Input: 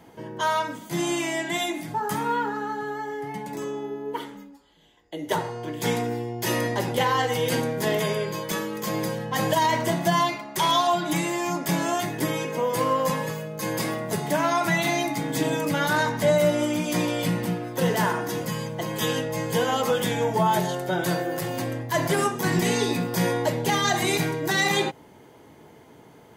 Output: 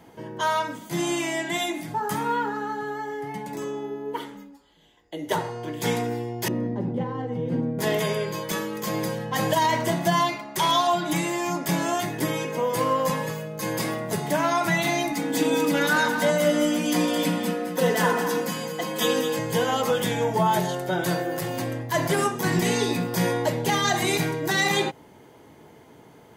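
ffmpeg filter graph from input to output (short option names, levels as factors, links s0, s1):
-filter_complex "[0:a]asettb=1/sr,asplit=3[s0][s1][s2];[s0]atrim=end=6.484[s3];[s1]atrim=start=6.48:end=7.79,asetpts=PTS-STARTPTS,afade=t=in:d=0.004:c=qsin,afade=t=out:st=1.306:d=0.004:c=qsin,acontrast=53,bandpass=f=200:t=q:w=1.8[s4];[s2]atrim=start=7.786[s5];[s3][s4]acrossfade=d=0.004:c1=hsin:c2=qsin[s6];[s6][s5]acrossfade=d=0.004:c1=qsin:c2=hsin,asettb=1/sr,asplit=3[s7][s8][s9];[s7]atrim=end=15.124[s10];[s8]atrim=start=15.12:end=19.39,asetpts=PTS-STARTPTS,afade=t=in:d=0.004:c=qsin,afade=t=out:st=4.266:d=0.004:c=qsin,highpass=170,aecho=1:1:4:0.64,atrim=end_sample=188307,aecho=1:1:215:0.398,atrim=end_sample=188307[s11];[s9]atrim=start=19.386[s12];[s10][s11]acrossfade=d=0.004:c1=hsin:c2=qsin[s13];[s13][s12]acrossfade=d=0.004:c1=qsin:c2=hsin"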